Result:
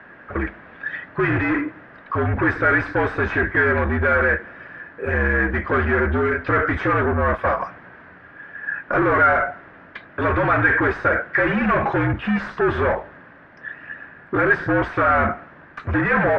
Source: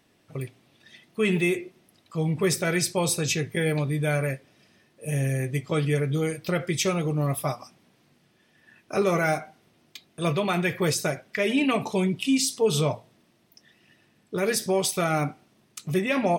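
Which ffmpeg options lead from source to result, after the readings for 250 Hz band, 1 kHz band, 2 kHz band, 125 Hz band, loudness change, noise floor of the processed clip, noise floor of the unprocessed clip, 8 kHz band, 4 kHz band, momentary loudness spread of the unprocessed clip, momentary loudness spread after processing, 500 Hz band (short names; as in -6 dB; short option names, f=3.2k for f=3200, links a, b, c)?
+3.0 dB, +11.0 dB, +13.0 dB, +2.0 dB, +5.5 dB, -46 dBFS, -64 dBFS, under -30 dB, -10.5 dB, 13 LU, 17 LU, +4.5 dB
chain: -filter_complex "[0:a]asplit=2[a][b];[b]highpass=f=720:p=1,volume=29dB,asoftclip=type=tanh:threshold=-13dB[c];[a][c]amix=inputs=2:normalize=0,lowpass=f=1.2k:p=1,volume=-6dB,afreqshift=-61,lowpass=f=1.6k:t=q:w=5.1"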